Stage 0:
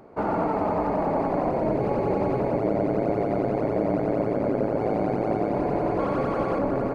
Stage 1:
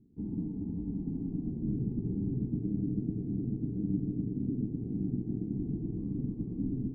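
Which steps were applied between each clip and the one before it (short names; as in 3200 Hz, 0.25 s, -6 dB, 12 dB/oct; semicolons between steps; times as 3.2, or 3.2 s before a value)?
inverse Chebyshev low-pass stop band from 540 Hz, stop band 40 dB; upward expander 1.5:1, over -39 dBFS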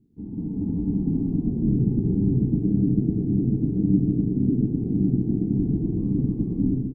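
AGC gain up to 11 dB; doubler 31 ms -11 dB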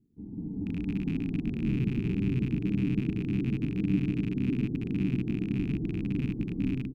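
rattling part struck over -23 dBFS, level -27 dBFS; gain -7 dB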